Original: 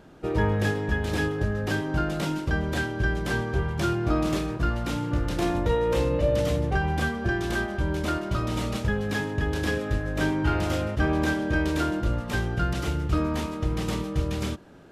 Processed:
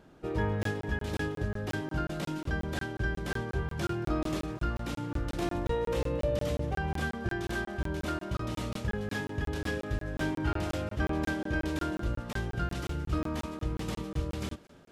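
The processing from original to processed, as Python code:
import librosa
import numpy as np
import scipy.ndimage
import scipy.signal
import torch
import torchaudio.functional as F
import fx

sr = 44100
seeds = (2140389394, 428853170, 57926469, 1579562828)

p1 = x + fx.echo_thinned(x, sr, ms=227, feedback_pct=56, hz=420.0, wet_db=-21.0, dry=0)
p2 = fx.buffer_crackle(p1, sr, first_s=0.63, period_s=0.18, block=1024, kind='zero')
y = p2 * librosa.db_to_amplitude(-6.5)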